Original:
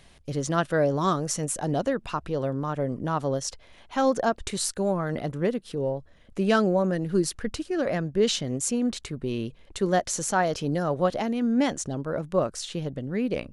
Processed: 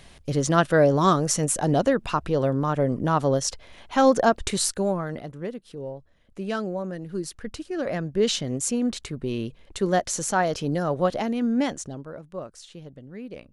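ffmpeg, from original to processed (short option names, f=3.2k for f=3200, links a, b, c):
-af "volume=13dB,afade=t=out:st=4.5:d=0.77:silence=0.251189,afade=t=in:st=7.2:d=1.14:silence=0.398107,afade=t=out:st=11.44:d=0.75:silence=0.251189"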